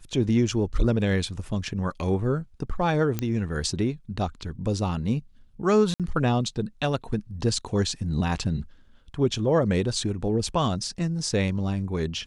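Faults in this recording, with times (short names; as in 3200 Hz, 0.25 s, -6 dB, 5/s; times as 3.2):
3.19 pop -12 dBFS
5.94–6 gap 57 ms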